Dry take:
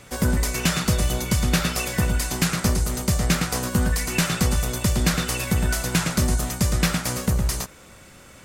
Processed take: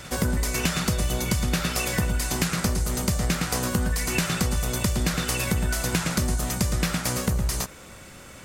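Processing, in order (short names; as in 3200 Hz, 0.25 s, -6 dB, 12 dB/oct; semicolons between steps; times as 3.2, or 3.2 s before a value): reverse echo 0.716 s -20.5 dB; compressor 4:1, threshold -24 dBFS, peak gain reduction 8 dB; gain +2.5 dB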